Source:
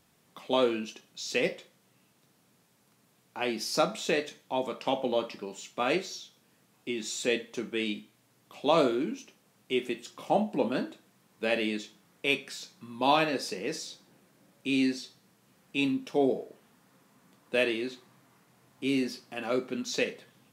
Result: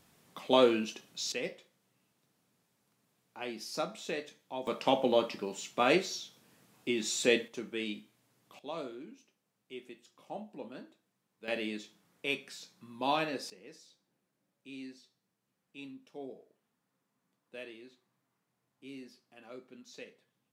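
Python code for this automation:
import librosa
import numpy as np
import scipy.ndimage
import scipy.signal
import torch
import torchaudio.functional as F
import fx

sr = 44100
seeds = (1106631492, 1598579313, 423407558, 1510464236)

y = fx.gain(x, sr, db=fx.steps((0.0, 1.5), (1.32, -9.0), (4.67, 1.5), (7.48, -5.5), (8.59, -16.5), (11.48, -6.5), (13.5, -19.0)))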